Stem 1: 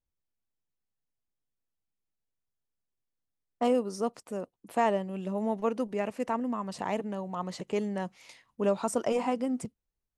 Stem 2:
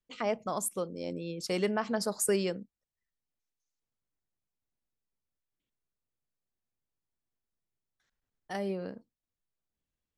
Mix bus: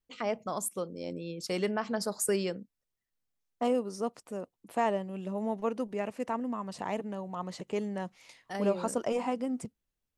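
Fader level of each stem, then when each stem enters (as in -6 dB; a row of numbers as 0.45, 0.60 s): -2.5, -1.0 dB; 0.00, 0.00 s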